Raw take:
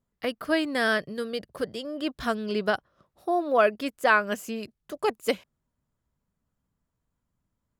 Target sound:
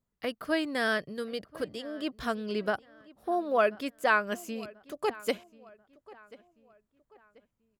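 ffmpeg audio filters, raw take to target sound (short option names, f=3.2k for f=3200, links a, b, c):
-filter_complex "[0:a]asettb=1/sr,asplit=3[a][b][c];[a]atrim=end=2.684[d];[b]atrim=start=2.68:end=3.32,asetpts=PTS-STARTPTS,afade=t=in:d=0.004:c=qsin,afade=t=out:st=0.636:d=0.004:c=qsin,equalizer=f=4k:t=o:w=1.1:g=-7.5[e];[c]atrim=start=3.316[f];[d][e]acrossfade=d=0.004:c1=hsin:c2=qsin[g];[g][f]acrossfade=d=0.004:c1=qsin:c2=hsin,asplit=2[h][i];[i]adelay=1037,lowpass=f=3.1k:p=1,volume=-21dB,asplit=2[j][k];[k]adelay=1037,lowpass=f=3.1k:p=1,volume=0.39,asplit=2[l][m];[m]adelay=1037,lowpass=f=3.1k:p=1,volume=0.39[n];[j][l][n]amix=inputs=3:normalize=0[o];[h][o]amix=inputs=2:normalize=0,volume=-4dB"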